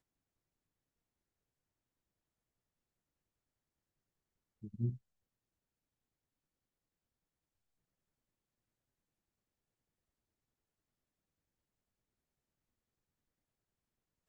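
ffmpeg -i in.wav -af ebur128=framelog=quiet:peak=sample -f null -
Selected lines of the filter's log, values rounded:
Integrated loudness:
  I:         -40.0 LUFS
  Threshold: -52.2 LUFS
Loudness range:
  LRA:        13.1 LU
  Threshold: -69.0 LUFS
  LRA low:   -61.6 LUFS
  LRA high:  -48.6 LUFS
Sample peak:
  Peak:      -25.8 dBFS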